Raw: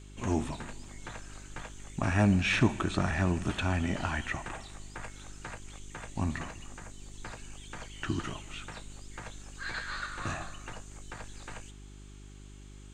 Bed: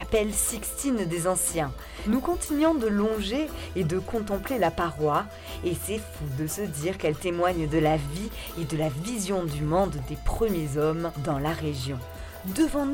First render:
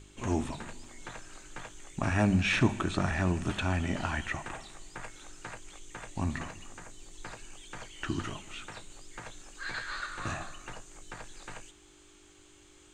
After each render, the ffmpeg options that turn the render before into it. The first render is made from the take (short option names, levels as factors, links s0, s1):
-af "bandreject=f=50:t=h:w=4,bandreject=f=100:t=h:w=4,bandreject=f=150:t=h:w=4,bandreject=f=200:t=h:w=4,bandreject=f=250:t=h:w=4"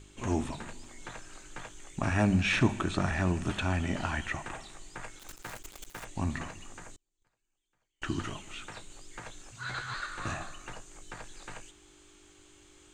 -filter_complex "[0:a]asettb=1/sr,asplit=3[s0][s1][s2];[s0]atrim=end=5.194[s3];[s1]atrim=start=5.19:end=6.05,asetpts=PTS-STARTPTS,afade=t=in:d=0.004:c=qsin,afade=t=out:st=0.856:d=0.004:c=qsin,acrusher=bits=8:dc=4:mix=0:aa=0.000001[s4];[s2]atrim=start=6.046[s5];[s3][s4]acrossfade=d=0.004:c1=hsin:c2=qsin[s6];[s6][s5]acrossfade=d=0.004:c1=qsin:c2=hsin,asettb=1/sr,asplit=3[s7][s8][s9];[s7]atrim=end=6.964[s10];[s8]atrim=start=6.96:end=8.02,asetpts=PTS-STARTPTS,afade=t=in:d=0.004:c=qsin,afade=t=out:st=1.056:d=0.004:c=qsin,agate=range=0.0158:threshold=0.0141:ratio=16:release=100:detection=peak[s11];[s9]atrim=start=8.016[s12];[s10][s11]acrossfade=d=0.004:c1=hsin:c2=qsin[s13];[s13][s12]acrossfade=d=0.004:c1=qsin:c2=hsin,asettb=1/sr,asplit=3[s14][s15][s16];[s14]atrim=end=9.514[s17];[s15]atrim=start=9.51:end=9.94,asetpts=PTS-STARTPTS,afade=t=in:d=0.004:c=qsin,afade=t=out:st=0.426:d=0.004:c=qsin,afreqshift=-140[s18];[s16]atrim=start=9.936[s19];[s17][s18]acrossfade=d=0.004:c1=hsin:c2=qsin[s20];[s20][s19]acrossfade=d=0.004:c1=qsin:c2=hsin"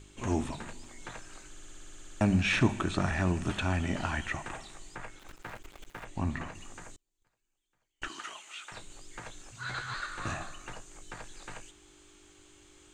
-filter_complex "[0:a]asettb=1/sr,asplit=3[s0][s1][s2];[s0]atrim=end=4.954[s3];[s1]atrim=start=4.95:end=6.55,asetpts=PTS-STARTPTS,afade=t=in:d=0.004:c=qsin,afade=t=out:st=1.596:d=0.004:c=qsin,acrossover=split=3300[s4][s5];[s5]acompressor=threshold=0.00126:ratio=4:attack=1:release=60[s6];[s4][s6]amix=inputs=2:normalize=0[s7];[s2]atrim=start=6.546[s8];[s3][s7]acrossfade=d=0.004:c1=hsin:c2=qsin[s9];[s9][s8]acrossfade=d=0.004:c1=qsin:c2=hsin,asettb=1/sr,asplit=3[s10][s11][s12];[s10]atrim=end=8.084[s13];[s11]atrim=start=8.08:end=8.72,asetpts=PTS-STARTPTS,afade=t=in:d=0.004:c=qsin,afade=t=out:st=0.636:d=0.004:c=qsin,highpass=830[s14];[s12]atrim=start=8.716[s15];[s13][s14]acrossfade=d=0.004:c1=hsin:c2=qsin[s16];[s16][s15]acrossfade=d=0.004:c1=qsin:c2=hsin,asplit=13[s17][s18][s19][s20][s21][s22][s23][s24][s25][s26][s27][s28][s29];[s17]atrim=end=1.552[s30];[s18]atrim=start=1.488:end=1.552[s31];[s19]atrim=start=1.488:end=1.552[s32];[s20]atrim=start=1.488:end=1.552[s33];[s21]atrim=start=1.488:end=1.552[s34];[s22]atrim=start=1.488:end=1.552[s35];[s23]atrim=start=1.488:end=1.552[s36];[s24]atrim=start=1.488:end=1.552[s37];[s25]atrim=start=1.488:end=1.552[s38];[s26]atrim=start=1.488:end=1.552[s39];[s27]atrim=start=1.488:end=1.552[s40];[s28]atrim=start=1.488:end=1.552[s41];[s29]atrim=start=2.208[s42];[s30][s31]acrossfade=d=0.004:c1=hsin:c2=hsin[s43];[s43][s32]acrossfade=d=0.004:c1=hsin:c2=hsin[s44];[s44][s33]acrossfade=d=0.004:c1=hsin:c2=hsin[s45];[s45][s34]acrossfade=d=0.004:c1=hsin:c2=hsin[s46];[s46][s35]acrossfade=d=0.004:c1=hsin:c2=hsin[s47];[s47][s36]acrossfade=d=0.004:c1=hsin:c2=hsin[s48];[s48][s37]acrossfade=d=0.004:c1=hsin:c2=hsin[s49];[s49][s38]acrossfade=d=0.004:c1=hsin:c2=hsin[s50];[s50][s39]acrossfade=d=0.004:c1=hsin:c2=hsin[s51];[s51][s40]acrossfade=d=0.004:c1=hsin:c2=hsin[s52];[s52][s41]acrossfade=d=0.004:c1=hsin:c2=hsin[s53];[s53][s42]acrossfade=d=0.004:c1=hsin:c2=hsin"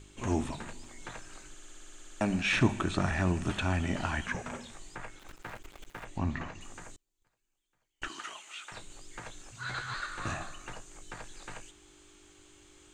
-filter_complex "[0:a]asettb=1/sr,asplit=3[s0][s1][s2];[s0]atrim=end=1.544[s3];[s1]atrim=start=1.54:end=2.53,asetpts=PTS-STARTPTS,afade=t=in:d=0.004:c=qsin,afade=t=out:st=0.986:d=0.004:c=qsin,equalizer=f=72:t=o:w=2:g=-14[s4];[s2]atrim=start=2.526[s5];[s3][s4]acrossfade=d=0.004:c1=hsin:c2=qsin[s6];[s6][s5]acrossfade=d=0.004:c1=qsin:c2=hsin,asettb=1/sr,asplit=3[s7][s8][s9];[s7]atrim=end=4.264[s10];[s8]atrim=start=4.26:end=4.72,asetpts=PTS-STARTPTS,afade=t=in:d=0.004:c=qsin,afade=t=out:st=0.456:d=0.004:c=qsin,afreqshift=-260[s11];[s9]atrim=start=4.716[s12];[s10][s11]acrossfade=d=0.004:c1=hsin:c2=qsin[s13];[s13][s12]acrossfade=d=0.004:c1=qsin:c2=hsin,asettb=1/sr,asplit=3[s14][s15][s16];[s14]atrim=end=6.184[s17];[s15]atrim=start=6.18:end=6.61,asetpts=PTS-STARTPTS,afade=t=in:d=0.004:c=qsin,afade=t=out:st=0.426:d=0.004:c=qsin,lowpass=f=6700:w=0.5412,lowpass=f=6700:w=1.3066[s18];[s16]atrim=start=6.606[s19];[s17][s18]acrossfade=d=0.004:c1=hsin:c2=qsin[s20];[s20][s19]acrossfade=d=0.004:c1=qsin:c2=hsin"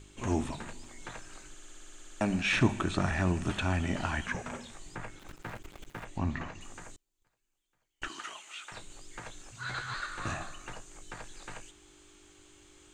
-filter_complex "[0:a]asettb=1/sr,asplit=3[s0][s1][s2];[s0]atrim=end=4.864[s3];[s1]atrim=start=4.86:end=6.04,asetpts=PTS-STARTPTS,afade=t=in:d=0.004:c=qsin,afade=t=out:st=1.176:d=0.004:c=qsin,equalizer=f=140:w=0.48:g=6.5[s4];[s2]atrim=start=6.036[s5];[s3][s4]acrossfade=d=0.004:c1=hsin:c2=qsin[s6];[s6][s5]acrossfade=d=0.004:c1=qsin:c2=hsin"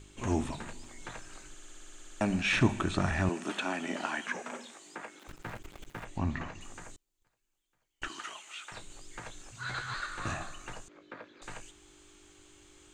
-filter_complex "[0:a]asettb=1/sr,asplit=3[s0][s1][s2];[s0]atrim=end=3.294[s3];[s1]atrim=start=3.29:end=5.28,asetpts=PTS-STARTPTS,afade=t=in:d=0.004:c=qsin,afade=t=out:st=1.986:d=0.004:c=qsin,highpass=f=240:w=0.5412,highpass=f=240:w=1.3066[s4];[s2]atrim=start=5.276[s5];[s3][s4]acrossfade=d=0.004:c1=hsin:c2=qsin[s6];[s6][s5]acrossfade=d=0.004:c1=qsin:c2=hsin,asettb=1/sr,asplit=3[s7][s8][s9];[s7]atrim=end=10.884[s10];[s8]atrim=start=10.88:end=11.42,asetpts=PTS-STARTPTS,afade=t=in:d=0.004:c=qsin,afade=t=out:st=0.536:d=0.004:c=qsin,highpass=240,equalizer=f=270:t=q:w=4:g=8,equalizer=f=550:t=q:w=4:g=6,equalizer=f=800:t=q:w=4:g=-9,equalizer=f=1900:t=q:w=4:g=-3,equalizer=f=2900:t=q:w=4:g=-8,lowpass=f=3400:w=0.5412,lowpass=f=3400:w=1.3066[s11];[s9]atrim=start=11.416[s12];[s10][s11]acrossfade=d=0.004:c1=hsin:c2=qsin[s13];[s13][s12]acrossfade=d=0.004:c1=qsin:c2=hsin"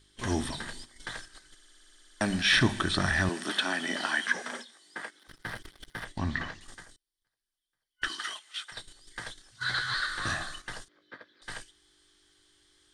-af "agate=range=0.251:threshold=0.00631:ratio=16:detection=peak,superequalizer=10b=1.41:11b=2.82:13b=3.55:14b=3.98:16b=3.98"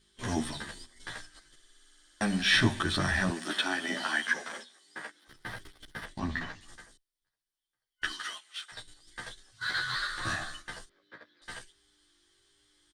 -filter_complex "[0:a]asplit=2[s0][s1];[s1]aeval=exprs='sgn(val(0))*max(abs(val(0))-0.0126,0)':c=same,volume=0.299[s2];[s0][s2]amix=inputs=2:normalize=0,asplit=2[s3][s4];[s4]adelay=11.8,afreqshift=-1.3[s5];[s3][s5]amix=inputs=2:normalize=1"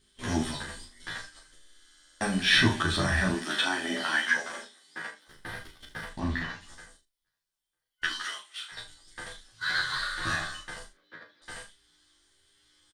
-filter_complex "[0:a]asplit=2[s0][s1];[s1]adelay=38,volume=0.299[s2];[s0][s2]amix=inputs=2:normalize=0,aecho=1:1:12|36|79:0.562|0.531|0.211"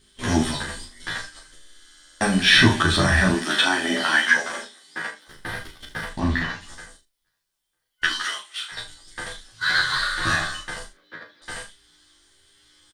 -af "volume=2.51,alimiter=limit=0.708:level=0:latency=1"